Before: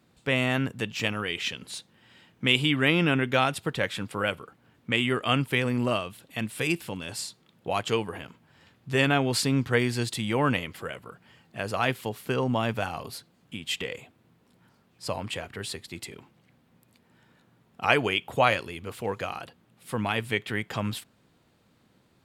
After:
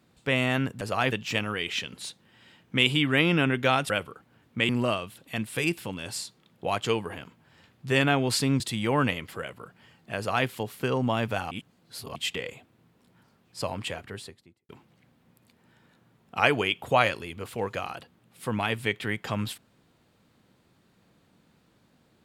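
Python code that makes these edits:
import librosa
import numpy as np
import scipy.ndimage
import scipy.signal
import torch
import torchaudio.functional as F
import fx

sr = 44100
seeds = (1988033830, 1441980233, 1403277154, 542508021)

y = fx.studio_fade_out(x, sr, start_s=15.36, length_s=0.79)
y = fx.edit(y, sr, fx.cut(start_s=3.59, length_s=0.63),
    fx.cut(start_s=5.01, length_s=0.71),
    fx.cut(start_s=9.63, length_s=0.43),
    fx.duplicate(start_s=11.63, length_s=0.31, to_s=0.81),
    fx.reverse_span(start_s=12.97, length_s=0.65), tone=tone)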